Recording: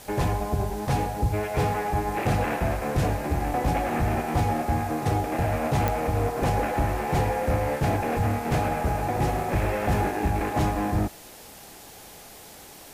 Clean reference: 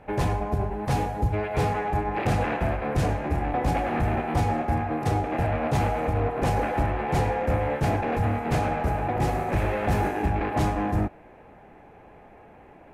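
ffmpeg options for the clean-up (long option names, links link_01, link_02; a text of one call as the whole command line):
ffmpeg -i in.wav -af "adeclick=threshold=4,afwtdn=0.005" out.wav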